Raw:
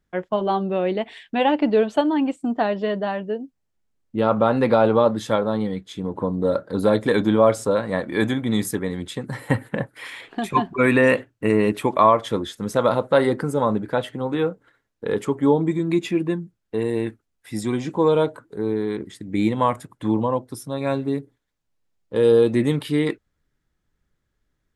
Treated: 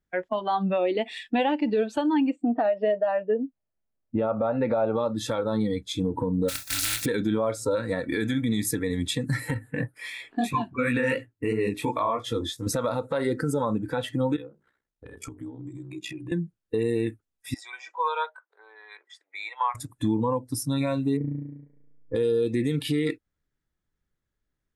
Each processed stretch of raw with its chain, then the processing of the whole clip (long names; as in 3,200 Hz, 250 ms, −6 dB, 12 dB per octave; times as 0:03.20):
0:02.30–0:04.96: low-pass filter 2,600 Hz + parametric band 620 Hz +9 dB 0.35 octaves
0:06.48–0:07.04: compressing power law on the bin magnitudes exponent 0.16 + parametric band 430 Hz −12.5 dB 0.4 octaves + downward compressor 10 to 1, threshold −26 dBFS
0:09.54–0:12.67: chorus effect 2.9 Hz, delay 16.5 ms, depth 5.6 ms + one half of a high-frequency compander decoder only
0:14.36–0:16.32: ring modulation 31 Hz + downward compressor 16 to 1, threshold −35 dBFS + mains-hum notches 50/100/150/200/250/300/350/400 Hz
0:17.54–0:19.75: inverse Chebyshev high-pass filter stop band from 230 Hz, stop band 60 dB + head-to-tape spacing loss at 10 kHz 25 dB
0:21.17–0:22.15: linear-phase brick-wall low-pass 2,400 Hz + flutter between parallel walls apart 6 metres, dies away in 1.3 s
whole clip: noise reduction from a noise print of the clip's start 15 dB; downward compressor 6 to 1, threshold −27 dBFS; brickwall limiter −22.5 dBFS; level +6.5 dB